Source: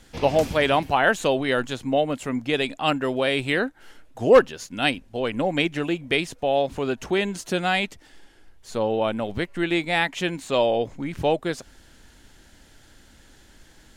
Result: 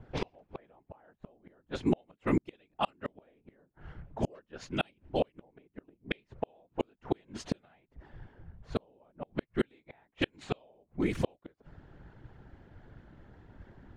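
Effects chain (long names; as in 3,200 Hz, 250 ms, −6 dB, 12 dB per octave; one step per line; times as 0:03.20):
random phases in short frames
gate with flip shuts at −16 dBFS, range −40 dB
low-pass that shuts in the quiet parts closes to 900 Hz, open at −27 dBFS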